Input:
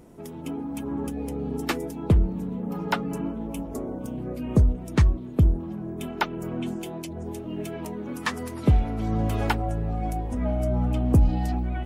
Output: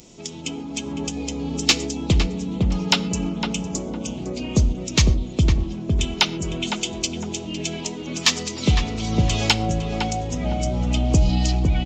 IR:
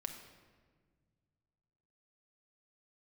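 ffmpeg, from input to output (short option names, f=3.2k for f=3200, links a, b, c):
-filter_complex "[0:a]aresample=16000,aresample=44100,aexciter=amount=5.1:drive=8.5:freq=2.4k,asplit=2[a][b];[b]adelay=507,lowpass=f=1.3k:p=1,volume=-3dB,asplit=2[c][d];[d]adelay=507,lowpass=f=1.3k:p=1,volume=0.31,asplit=2[e][f];[f]adelay=507,lowpass=f=1.3k:p=1,volume=0.31,asplit=2[g][h];[h]adelay=507,lowpass=f=1.3k:p=1,volume=0.31[i];[a][c][e][g][i]amix=inputs=5:normalize=0,asplit=2[j][k];[1:a]atrim=start_sample=2205,atrim=end_sample=6174,asetrate=41013,aresample=44100[l];[k][l]afir=irnorm=-1:irlink=0,volume=-6.5dB[m];[j][m]amix=inputs=2:normalize=0,volume=-2dB"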